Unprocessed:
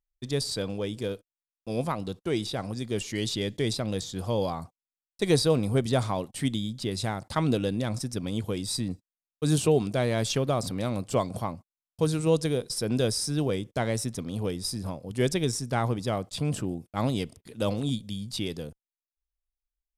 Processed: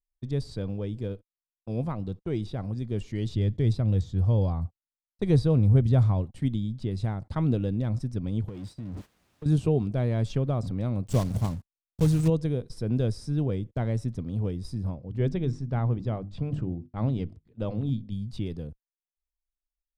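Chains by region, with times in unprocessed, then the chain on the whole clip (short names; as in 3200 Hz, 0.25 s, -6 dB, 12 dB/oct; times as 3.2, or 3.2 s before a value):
3.29–6.3 bell 83 Hz +8.5 dB 1.3 oct + de-esser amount 35%
8.48–9.46 zero-crossing step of -30.5 dBFS + HPF 100 Hz 6 dB/oct + compressor 12:1, threshold -33 dBFS
11.07–12.3 block floating point 3-bit + tone controls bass +5 dB, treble +14 dB
14.95–18.12 air absorption 93 m + notches 50/100/150/200/250/300/350 Hz
whole clip: RIAA curve playback; gate -35 dBFS, range -13 dB; gain -7.5 dB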